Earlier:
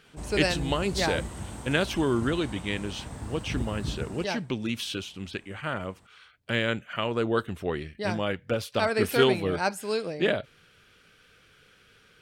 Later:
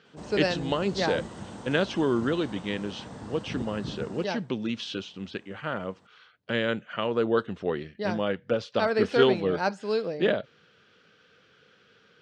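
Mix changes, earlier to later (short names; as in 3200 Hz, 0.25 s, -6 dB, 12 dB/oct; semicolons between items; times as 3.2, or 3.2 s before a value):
speech: add air absorption 66 m; master: add speaker cabinet 140–6500 Hz, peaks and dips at 200 Hz +3 dB, 490 Hz +4 dB, 2300 Hz -5 dB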